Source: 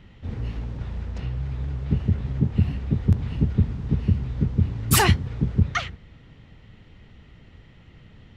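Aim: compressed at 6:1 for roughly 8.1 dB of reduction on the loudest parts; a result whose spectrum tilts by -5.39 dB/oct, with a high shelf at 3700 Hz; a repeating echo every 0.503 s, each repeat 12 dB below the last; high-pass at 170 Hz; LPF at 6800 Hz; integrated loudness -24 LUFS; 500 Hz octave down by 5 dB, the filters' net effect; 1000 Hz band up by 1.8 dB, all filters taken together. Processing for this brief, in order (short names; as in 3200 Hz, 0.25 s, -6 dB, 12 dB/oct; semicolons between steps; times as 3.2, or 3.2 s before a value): HPF 170 Hz; LPF 6800 Hz; bell 500 Hz -8 dB; bell 1000 Hz +5 dB; high shelf 3700 Hz -4 dB; compressor 6:1, threshold -28 dBFS; feedback echo 0.503 s, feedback 25%, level -12 dB; gain +13 dB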